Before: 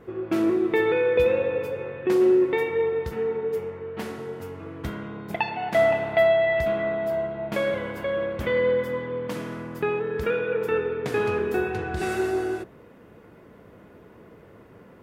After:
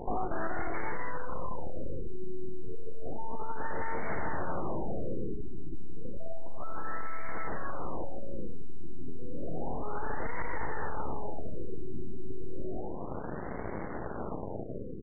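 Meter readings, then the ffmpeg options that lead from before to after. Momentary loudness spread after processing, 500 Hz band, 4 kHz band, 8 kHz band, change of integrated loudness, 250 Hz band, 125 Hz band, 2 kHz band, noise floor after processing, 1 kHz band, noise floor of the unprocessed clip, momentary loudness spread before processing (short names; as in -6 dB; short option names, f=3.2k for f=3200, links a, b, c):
9 LU, -17.5 dB, under -40 dB, n/a, -14.5 dB, -12.0 dB, -5.0 dB, -12.5 dB, -37 dBFS, -6.0 dB, -50 dBFS, 14 LU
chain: -filter_complex "[0:a]areverse,acompressor=threshold=-34dB:ratio=5,areverse,aeval=exprs='0.0531*(cos(1*acos(clip(val(0)/0.0531,-1,1)))-cos(1*PI/2))+0.0188*(cos(4*acos(clip(val(0)/0.0531,-1,1)))-cos(4*PI/2))+0.0211*(cos(8*acos(clip(val(0)/0.0531,-1,1)))-cos(8*PI/2))':c=same,asplit=2[a][b];[b]adelay=157,lowpass=f=870:p=1,volume=-12dB,asplit=2[c][d];[d]adelay=157,lowpass=f=870:p=1,volume=0.48,asplit=2[e][f];[f]adelay=157,lowpass=f=870:p=1,volume=0.48,asplit=2[g][h];[h]adelay=157,lowpass=f=870:p=1,volume=0.48,asplit=2[i][j];[j]adelay=157,lowpass=f=870:p=1,volume=0.48[k];[a][c][e][g][i][k]amix=inputs=6:normalize=0,aeval=exprs='(tanh(50.1*val(0)+0.55)-tanh(0.55))/50.1':c=same,afftfilt=real='re*lt(b*sr/1024,400*pow(2300/400,0.5+0.5*sin(2*PI*0.31*pts/sr)))':imag='im*lt(b*sr/1024,400*pow(2300/400,0.5+0.5*sin(2*PI*0.31*pts/sr)))':win_size=1024:overlap=0.75,volume=7.5dB"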